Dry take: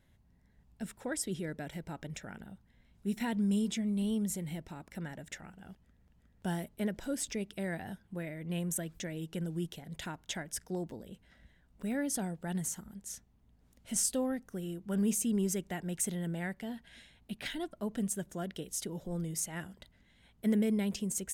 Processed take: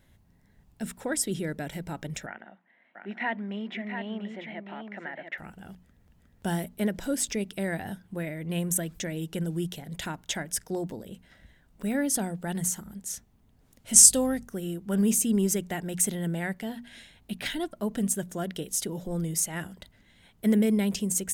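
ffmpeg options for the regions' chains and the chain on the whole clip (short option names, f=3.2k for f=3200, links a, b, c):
-filter_complex "[0:a]asettb=1/sr,asplit=3[a][b][c];[a]atrim=end=2.264[d];[b]atrim=start=2.26:end=5.38,asetpts=PTS-STARTPTS,afade=t=in:d=0.004:c=qsin,afade=t=out:st=3.116:d=0.004:c=qsin,highpass=f=280:w=0.5412,highpass=f=280:w=1.3066,equalizer=f=290:t=q:w=4:g=-5,equalizer=f=440:t=q:w=4:g=-9,equalizer=f=690:t=q:w=4:g=5,equalizer=f=1.9k:t=q:w=4:g=7,lowpass=f=2.7k:w=0.5412,lowpass=f=2.7k:w=1.3066,aecho=1:1:690:0.447,atrim=end_sample=137592[e];[c]atrim=start=5.376[f];[d][e]acrossfade=d=0.004:c1=hsin:c2=qsin[g];[g][f]acrossfade=d=0.004:c1=qsin:c2=hsin,asettb=1/sr,asplit=3[h][i][j];[h]atrim=end=13.934[k];[i]atrim=start=13.93:end=14.47,asetpts=PTS-STARTPTS,afade=t=in:d=0.004:c=qsin,afade=t=out:st=0.536:d=0.004:c=qsin,equalizer=f=7.3k:t=o:w=1.6:g=9.5,aeval=exprs='val(0)+0.00224*(sin(2*PI*50*n/s)+sin(2*PI*2*50*n/s)/2+sin(2*PI*3*50*n/s)/3+sin(2*PI*4*50*n/s)/4+sin(2*PI*5*50*n/s)/5)':c=same,agate=range=-33dB:threshold=-50dB:ratio=3:release=100:detection=peak[l];[j]atrim=start=14.466[m];[k][l]acrossfade=d=0.004:c1=hsin:c2=qsin[n];[n][m]acrossfade=d=0.004:c1=qsin:c2=hsin,highshelf=f=9.4k:g=4.5,bandreject=f=60:t=h:w=6,bandreject=f=120:t=h:w=6,bandreject=f=180:t=h:w=6,bandreject=f=240:t=h:w=6,volume=6.5dB"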